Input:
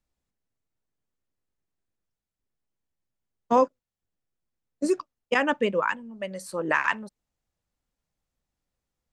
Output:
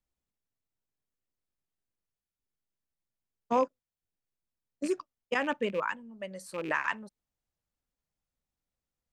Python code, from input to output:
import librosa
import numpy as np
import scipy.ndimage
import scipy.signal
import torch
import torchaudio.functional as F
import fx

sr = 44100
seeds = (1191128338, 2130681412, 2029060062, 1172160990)

y = fx.rattle_buzz(x, sr, strikes_db=-37.0, level_db=-27.0)
y = y * 10.0 ** (-6.5 / 20.0)